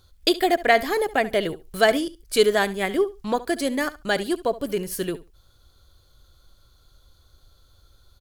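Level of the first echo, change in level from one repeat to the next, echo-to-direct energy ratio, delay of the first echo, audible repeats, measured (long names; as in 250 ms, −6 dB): −17.0 dB, −16.0 dB, −17.0 dB, 70 ms, 2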